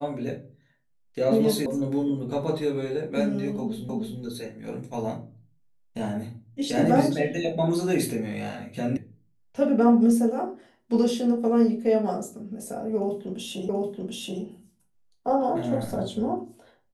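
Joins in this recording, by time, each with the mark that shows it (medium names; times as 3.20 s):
1.66 s: sound stops dead
3.89 s: repeat of the last 0.31 s
8.97 s: sound stops dead
13.69 s: repeat of the last 0.73 s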